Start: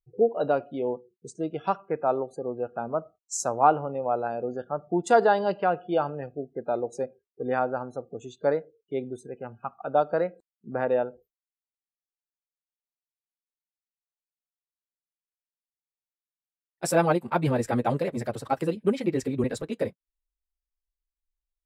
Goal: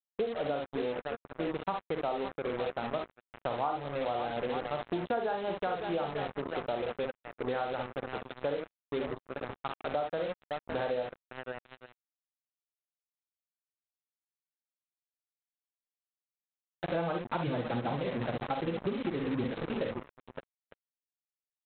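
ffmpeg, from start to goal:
ffmpeg -i in.wav -af "aecho=1:1:41|42|60|64|560|899:0.15|0.473|0.282|0.398|0.251|0.168,aresample=8000,acrusher=bits=4:mix=0:aa=0.5,aresample=44100,acompressor=threshold=-27dB:ratio=6,volume=-2.5dB" out.wav

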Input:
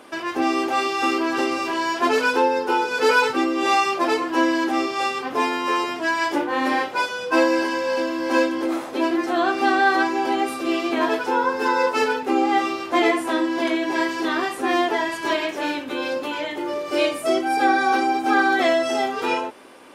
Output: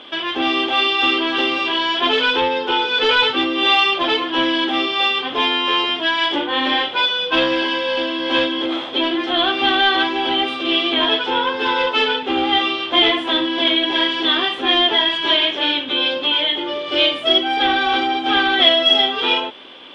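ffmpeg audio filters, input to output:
ffmpeg -i in.wav -af "asoftclip=type=tanh:threshold=-14dB,lowpass=frequency=3300:width_type=q:width=14,volume=1.5dB" out.wav

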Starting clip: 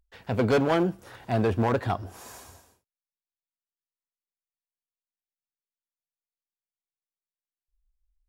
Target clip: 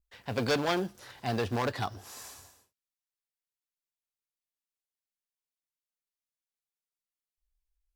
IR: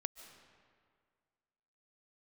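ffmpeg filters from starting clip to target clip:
-af "adynamicequalizer=threshold=0.00251:dfrequency=4600:dqfactor=1.3:tfrequency=4600:tqfactor=1.3:attack=5:release=100:ratio=0.375:range=4:mode=boostabove:tftype=bell,asetrate=45938,aresample=44100,tiltshelf=frequency=1300:gain=-3.5,acrusher=bits=7:mode=log:mix=0:aa=0.000001,volume=-4dB"

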